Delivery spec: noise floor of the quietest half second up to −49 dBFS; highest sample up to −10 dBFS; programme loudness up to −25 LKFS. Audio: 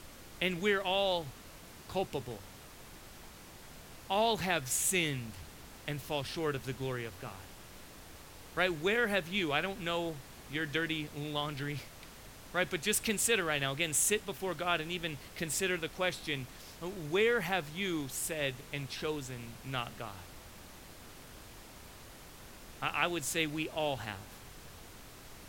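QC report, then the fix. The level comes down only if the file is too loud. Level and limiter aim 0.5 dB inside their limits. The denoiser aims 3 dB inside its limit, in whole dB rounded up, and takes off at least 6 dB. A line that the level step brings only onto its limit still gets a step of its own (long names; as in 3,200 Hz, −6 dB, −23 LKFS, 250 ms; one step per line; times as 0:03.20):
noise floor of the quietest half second −52 dBFS: in spec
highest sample −13.5 dBFS: in spec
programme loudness −33.5 LKFS: in spec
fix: no processing needed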